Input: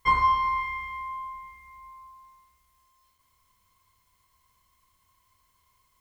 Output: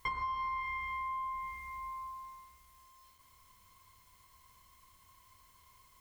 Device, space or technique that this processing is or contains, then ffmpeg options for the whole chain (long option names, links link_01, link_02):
serial compression, leveller first: -af "acompressor=threshold=-27dB:ratio=3,acompressor=threshold=-42dB:ratio=4,volume=5dB"